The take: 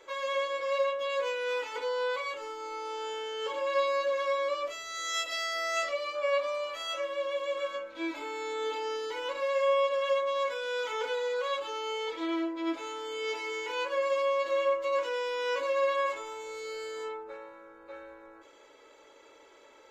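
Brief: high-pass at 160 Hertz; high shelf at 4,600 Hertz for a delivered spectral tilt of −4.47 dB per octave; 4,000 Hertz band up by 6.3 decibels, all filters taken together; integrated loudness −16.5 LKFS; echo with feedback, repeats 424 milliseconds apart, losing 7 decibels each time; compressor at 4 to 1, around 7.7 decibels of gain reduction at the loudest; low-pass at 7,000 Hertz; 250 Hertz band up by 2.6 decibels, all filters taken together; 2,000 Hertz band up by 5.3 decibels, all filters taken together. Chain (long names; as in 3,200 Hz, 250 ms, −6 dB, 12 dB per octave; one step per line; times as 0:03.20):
high-pass filter 160 Hz
low-pass filter 7,000 Hz
parametric band 250 Hz +4.5 dB
parametric band 2,000 Hz +4 dB
parametric band 4,000 Hz +3.5 dB
high-shelf EQ 4,600 Hz +7.5 dB
downward compressor 4 to 1, threshold −31 dBFS
repeating echo 424 ms, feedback 45%, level −7 dB
level +16 dB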